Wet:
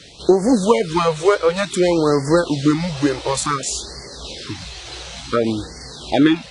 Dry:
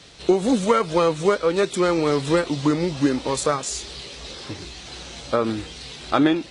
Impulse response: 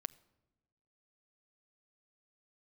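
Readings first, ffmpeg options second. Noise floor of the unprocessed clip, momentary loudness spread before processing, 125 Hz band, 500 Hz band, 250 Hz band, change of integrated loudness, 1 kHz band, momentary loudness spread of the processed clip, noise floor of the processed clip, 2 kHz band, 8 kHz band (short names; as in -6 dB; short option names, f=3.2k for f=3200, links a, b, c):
-40 dBFS, 16 LU, +4.0 dB, +3.5 dB, +4.0 dB, +3.5 dB, +2.5 dB, 16 LU, -37 dBFS, +3.0 dB, +4.5 dB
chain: -af "afftfilt=real='re*(1-between(b*sr/1024,200*pow(3100/200,0.5+0.5*sin(2*PI*0.56*pts/sr))/1.41,200*pow(3100/200,0.5+0.5*sin(2*PI*0.56*pts/sr))*1.41))':imag='im*(1-between(b*sr/1024,200*pow(3100/200,0.5+0.5*sin(2*PI*0.56*pts/sr))/1.41,200*pow(3100/200,0.5+0.5*sin(2*PI*0.56*pts/sr))*1.41))':win_size=1024:overlap=0.75,volume=4.5dB"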